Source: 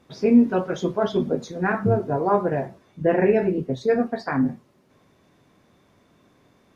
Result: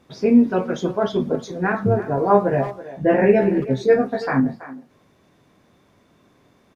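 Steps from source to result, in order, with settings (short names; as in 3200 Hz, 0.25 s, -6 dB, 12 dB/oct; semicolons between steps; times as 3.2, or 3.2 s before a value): 2.16–4.4 doubler 15 ms -2 dB; speakerphone echo 0.33 s, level -14 dB; gain +1.5 dB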